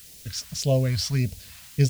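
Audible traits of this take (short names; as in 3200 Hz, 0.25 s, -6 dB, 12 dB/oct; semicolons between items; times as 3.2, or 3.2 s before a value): a quantiser's noise floor 8-bit, dither triangular; phasing stages 2, 1.7 Hz, lowest notch 390–1200 Hz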